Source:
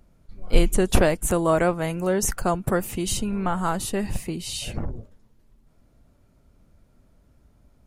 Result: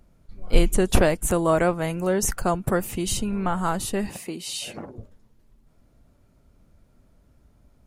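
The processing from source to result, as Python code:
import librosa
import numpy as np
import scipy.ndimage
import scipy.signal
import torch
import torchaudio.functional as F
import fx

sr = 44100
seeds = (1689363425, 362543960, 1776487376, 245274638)

y = fx.highpass(x, sr, hz=260.0, slope=12, at=(4.09, 4.98))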